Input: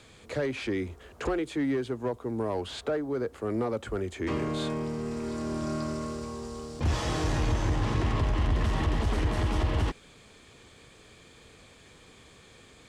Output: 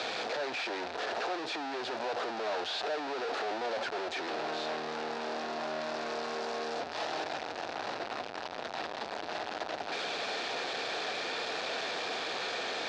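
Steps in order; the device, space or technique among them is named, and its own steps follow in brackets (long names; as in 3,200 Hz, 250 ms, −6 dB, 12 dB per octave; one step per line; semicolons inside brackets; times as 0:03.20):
home computer beeper (sign of each sample alone; loudspeaker in its box 540–4,500 Hz, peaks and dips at 720 Hz +6 dB, 1,100 Hz −6 dB, 2,100 Hz −6 dB, 3,100 Hz −6 dB)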